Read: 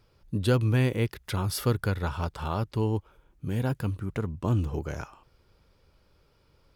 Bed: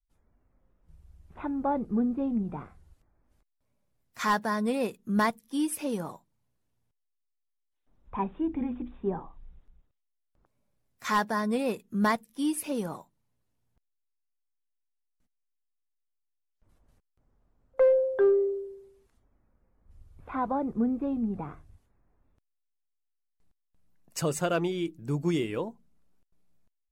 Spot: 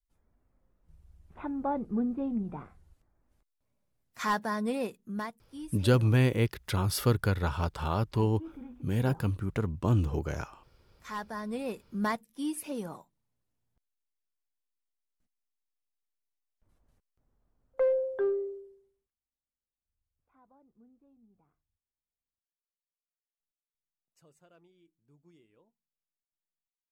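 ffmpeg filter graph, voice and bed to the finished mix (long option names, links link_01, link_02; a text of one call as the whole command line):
ffmpeg -i stem1.wav -i stem2.wav -filter_complex "[0:a]adelay=5400,volume=0dB[link_01];[1:a]volume=6dB,afade=type=out:start_time=4.77:duration=0.53:silence=0.281838,afade=type=in:start_time=11.03:duration=0.8:silence=0.354813,afade=type=out:start_time=18.05:duration=1.09:silence=0.0354813[link_02];[link_01][link_02]amix=inputs=2:normalize=0" out.wav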